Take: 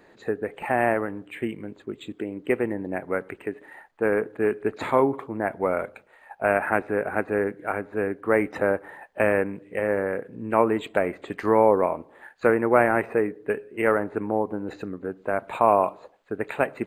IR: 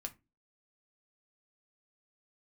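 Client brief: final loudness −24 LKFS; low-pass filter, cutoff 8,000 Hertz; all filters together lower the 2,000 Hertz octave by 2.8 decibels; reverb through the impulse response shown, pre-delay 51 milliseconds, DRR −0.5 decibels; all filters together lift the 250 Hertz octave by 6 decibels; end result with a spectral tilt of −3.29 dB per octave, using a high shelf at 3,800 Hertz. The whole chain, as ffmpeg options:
-filter_complex "[0:a]lowpass=8000,equalizer=frequency=250:width_type=o:gain=8,equalizer=frequency=2000:width_type=o:gain=-5,highshelf=frequency=3800:gain=5,asplit=2[link_01][link_02];[1:a]atrim=start_sample=2205,adelay=51[link_03];[link_02][link_03]afir=irnorm=-1:irlink=0,volume=3dB[link_04];[link_01][link_04]amix=inputs=2:normalize=0,volume=-4.5dB"

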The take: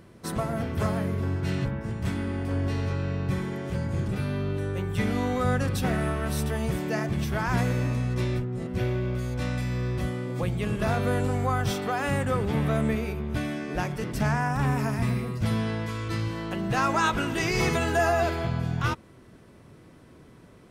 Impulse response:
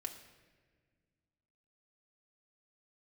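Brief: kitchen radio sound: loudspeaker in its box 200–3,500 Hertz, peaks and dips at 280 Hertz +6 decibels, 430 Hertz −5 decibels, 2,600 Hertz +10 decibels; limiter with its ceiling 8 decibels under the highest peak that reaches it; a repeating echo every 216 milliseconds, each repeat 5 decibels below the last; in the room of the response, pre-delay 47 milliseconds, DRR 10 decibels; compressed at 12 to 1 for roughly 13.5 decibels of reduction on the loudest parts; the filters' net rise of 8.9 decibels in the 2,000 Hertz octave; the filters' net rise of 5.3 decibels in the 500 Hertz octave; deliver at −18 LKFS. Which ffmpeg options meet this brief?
-filter_complex "[0:a]equalizer=frequency=500:width_type=o:gain=8.5,equalizer=frequency=2000:width_type=o:gain=7.5,acompressor=threshold=-29dB:ratio=12,alimiter=level_in=2.5dB:limit=-24dB:level=0:latency=1,volume=-2.5dB,aecho=1:1:216|432|648|864|1080|1296|1512:0.562|0.315|0.176|0.0988|0.0553|0.031|0.0173,asplit=2[link_01][link_02];[1:a]atrim=start_sample=2205,adelay=47[link_03];[link_02][link_03]afir=irnorm=-1:irlink=0,volume=-8dB[link_04];[link_01][link_04]amix=inputs=2:normalize=0,highpass=200,equalizer=frequency=280:width_type=q:width=4:gain=6,equalizer=frequency=430:width_type=q:width=4:gain=-5,equalizer=frequency=2600:width_type=q:width=4:gain=10,lowpass=frequency=3500:width=0.5412,lowpass=frequency=3500:width=1.3066,volume=16dB"

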